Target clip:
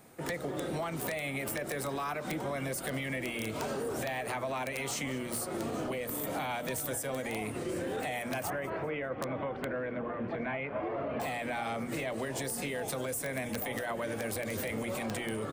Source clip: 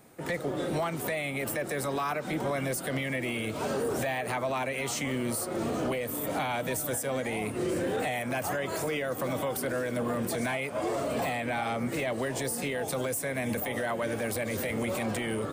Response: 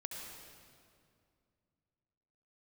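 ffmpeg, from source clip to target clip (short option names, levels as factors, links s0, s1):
-filter_complex "[0:a]asettb=1/sr,asplit=3[s0][s1][s2];[s0]atrim=end=8.504[s3];[s1]atrim=start=8.5:end=11.2,asetpts=PTS-STARTPTS,afade=t=in:d=0.004:c=qsin,afade=t=out:st=2.696:d=0.004:c=qsin,lowpass=f=2500:w=0.5412,lowpass=f=2500:w=1.3066[s4];[s2]atrim=start=11.196[s5];[s3][s4]acrossfade=d=0.004:c1=hsin:c2=qsin[s6];[s6][s5]acrossfade=d=0.004:c1=qsin:c2=hsin,acompressor=threshold=0.0282:ratio=12,bandreject=f=60:t=h:w=6,bandreject=f=120:t=h:w=6,bandreject=f=180:t=h:w=6,bandreject=f=240:t=h:w=6,bandreject=f=300:t=h:w=6,bandreject=f=360:t=h:w=6,bandreject=f=420:t=h:w=6,bandreject=f=480:t=h:w=6,bandreject=f=540:t=h:w=6,bandreject=f=600:t=h:w=6,asplit=4[s7][s8][s9][s10];[s8]adelay=198,afreqshift=-77,volume=0.1[s11];[s9]adelay=396,afreqshift=-154,volume=0.0339[s12];[s10]adelay=594,afreqshift=-231,volume=0.0116[s13];[s7][s11][s12][s13]amix=inputs=4:normalize=0,aeval=exprs='(mod(18.8*val(0)+1,2)-1)/18.8':c=same"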